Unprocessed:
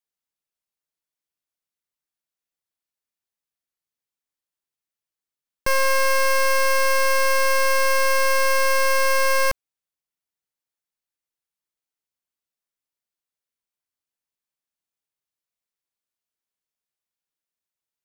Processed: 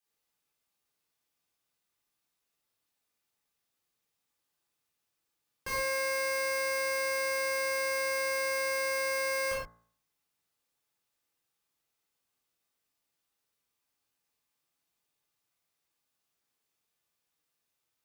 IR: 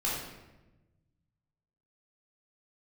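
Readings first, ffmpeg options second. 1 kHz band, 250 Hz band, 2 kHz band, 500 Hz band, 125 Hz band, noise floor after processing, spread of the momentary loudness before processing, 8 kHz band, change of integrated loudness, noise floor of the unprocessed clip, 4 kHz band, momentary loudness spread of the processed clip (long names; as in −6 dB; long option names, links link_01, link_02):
−15.0 dB, −7.0 dB, −10.0 dB, −9.5 dB, can't be measured, −83 dBFS, 3 LU, −10.0 dB, −10.5 dB, below −85 dBFS, −10.5 dB, 3 LU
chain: -filter_complex "[0:a]asoftclip=type=tanh:threshold=-34dB,highpass=40,bandreject=frequency=57.08:width_type=h:width=4,bandreject=frequency=114.16:width_type=h:width=4,bandreject=frequency=171.24:width_type=h:width=4,bandreject=frequency=228.32:width_type=h:width=4,bandreject=frequency=285.4:width_type=h:width=4,bandreject=frequency=342.48:width_type=h:width=4,bandreject=frequency=399.56:width_type=h:width=4,bandreject=frequency=456.64:width_type=h:width=4,bandreject=frequency=513.72:width_type=h:width=4,bandreject=frequency=570.8:width_type=h:width=4,bandreject=frequency=627.88:width_type=h:width=4,bandreject=frequency=684.96:width_type=h:width=4,bandreject=frequency=742.04:width_type=h:width=4,bandreject=frequency=799.12:width_type=h:width=4,bandreject=frequency=856.2:width_type=h:width=4,bandreject=frequency=913.28:width_type=h:width=4,bandreject=frequency=970.36:width_type=h:width=4,bandreject=frequency=1027.44:width_type=h:width=4,bandreject=frequency=1084.52:width_type=h:width=4,bandreject=frequency=1141.6:width_type=h:width=4,bandreject=frequency=1198.68:width_type=h:width=4,bandreject=frequency=1255.76:width_type=h:width=4,bandreject=frequency=1312.84:width_type=h:width=4,bandreject=frequency=1369.92:width_type=h:width=4,bandreject=frequency=1427:width_type=h:width=4,bandreject=frequency=1484.08:width_type=h:width=4,bandreject=frequency=1541.16:width_type=h:width=4,bandreject=frequency=1598.24:width_type=h:width=4,bandreject=frequency=1655.32:width_type=h:width=4,bandreject=frequency=1712.4:width_type=h:width=4,bandreject=frequency=1769.48:width_type=h:width=4,bandreject=frequency=1826.56:width_type=h:width=4,bandreject=frequency=1883.64:width_type=h:width=4,bandreject=frequency=1940.72:width_type=h:width=4,bandreject=frequency=1997.8:width_type=h:width=4,bandreject=frequency=2054.88:width_type=h:width=4[link_01];[1:a]atrim=start_sample=2205,atrim=end_sample=6174[link_02];[link_01][link_02]afir=irnorm=-1:irlink=0,volume=2dB"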